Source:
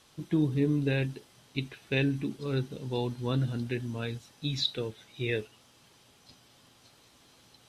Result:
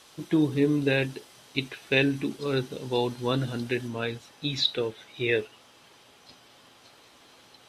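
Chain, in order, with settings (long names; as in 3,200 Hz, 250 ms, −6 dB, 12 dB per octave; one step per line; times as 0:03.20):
bass and treble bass −10 dB, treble 0 dB, from 0:03.87 treble −6 dB
level +7.5 dB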